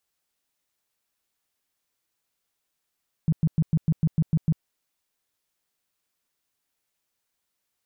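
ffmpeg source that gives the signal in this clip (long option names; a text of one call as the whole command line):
ffmpeg -f lavfi -i "aevalsrc='0.15*sin(2*PI*159*mod(t,0.15))*lt(mod(t,0.15),7/159)':duration=1.35:sample_rate=44100" out.wav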